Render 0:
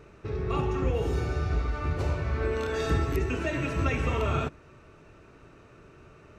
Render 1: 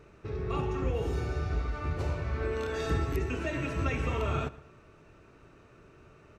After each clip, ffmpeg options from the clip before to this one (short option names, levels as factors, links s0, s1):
-filter_complex "[0:a]asplit=2[s0][s1];[s1]adelay=115,lowpass=f=4100:p=1,volume=0.112,asplit=2[s2][s3];[s3]adelay=115,lowpass=f=4100:p=1,volume=0.43,asplit=2[s4][s5];[s5]adelay=115,lowpass=f=4100:p=1,volume=0.43[s6];[s0][s2][s4][s6]amix=inputs=4:normalize=0,volume=0.668"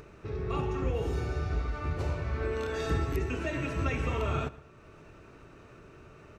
-af "acompressor=mode=upward:threshold=0.00562:ratio=2.5"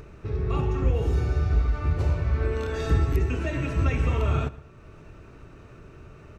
-af "lowshelf=f=150:g=9.5,volume=1.19"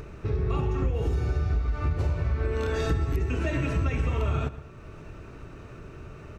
-af "acompressor=threshold=0.0501:ratio=6,volume=1.5"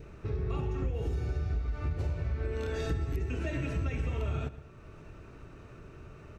-af "adynamicequalizer=threshold=0.00251:dfrequency=1100:dqfactor=2.6:tfrequency=1100:tqfactor=2.6:attack=5:release=100:ratio=0.375:range=3:mode=cutabove:tftype=bell,volume=0.501"